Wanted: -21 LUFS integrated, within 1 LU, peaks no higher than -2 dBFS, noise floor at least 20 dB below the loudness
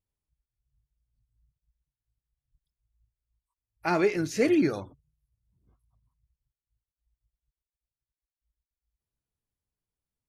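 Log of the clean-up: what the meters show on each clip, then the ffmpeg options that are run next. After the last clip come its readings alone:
loudness -26.0 LUFS; peak -11.5 dBFS; loudness target -21.0 LUFS
-> -af "volume=5dB"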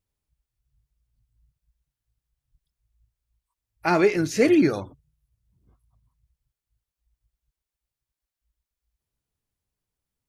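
loudness -21.0 LUFS; peak -6.5 dBFS; noise floor -90 dBFS

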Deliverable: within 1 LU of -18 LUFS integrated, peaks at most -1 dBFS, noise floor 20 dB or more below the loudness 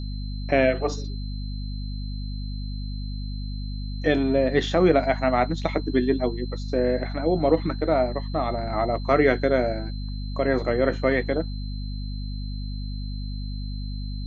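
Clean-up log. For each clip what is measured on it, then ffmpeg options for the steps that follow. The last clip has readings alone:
hum 50 Hz; harmonics up to 250 Hz; hum level -28 dBFS; steady tone 4100 Hz; tone level -44 dBFS; loudness -25.5 LUFS; peak -6.5 dBFS; loudness target -18.0 LUFS
-> -af "bandreject=f=50:t=h:w=6,bandreject=f=100:t=h:w=6,bandreject=f=150:t=h:w=6,bandreject=f=200:t=h:w=6,bandreject=f=250:t=h:w=6"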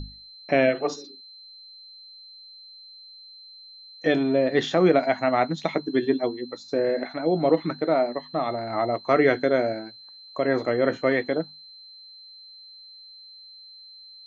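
hum none; steady tone 4100 Hz; tone level -44 dBFS
-> -af "bandreject=f=4.1k:w=30"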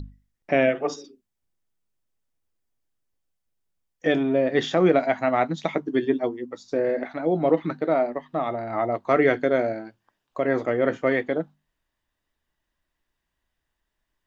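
steady tone none; loudness -24.0 LUFS; peak -7.5 dBFS; loudness target -18.0 LUFS
-> -af "volume=6dB"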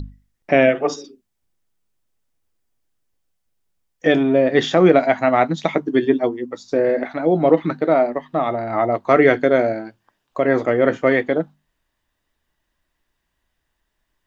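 loudness -18.0 LUFS; peak -1.5 dBFS; noise floor -75 dBFS

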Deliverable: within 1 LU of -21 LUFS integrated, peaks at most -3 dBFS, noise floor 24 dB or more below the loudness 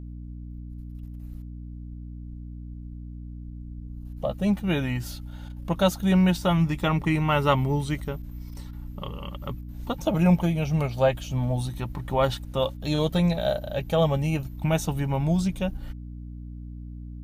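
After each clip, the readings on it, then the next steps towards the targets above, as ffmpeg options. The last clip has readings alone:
hum 60 Hz; harmonics up to 300 Hz; hum level -36 dBFS; loudness -25.5 LUFS; peak -8.5 dBFS; loudness target -21.0 LUFS
-> -af "bandreject=f=60:t=h:w=4,bandreject=f=120:t=h:w=4,bandreject=f=180:t=h:w=4,bandreject=f=240:t=h:w=4,bandreject=f=300:t=h:w=4"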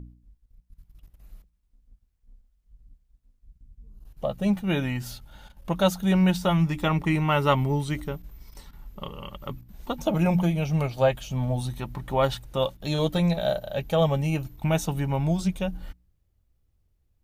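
hum none; loudness -25.5 LUFS; peak -8.5 dBFS; loudness target -21.0 LUFS
-> -af "volume=4.5dB"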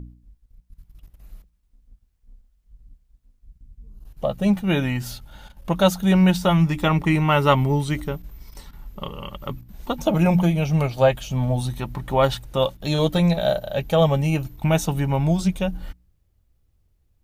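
loudness -21.0 LUFS; peak -4.0 dBFS; noise floor -66 dBFS

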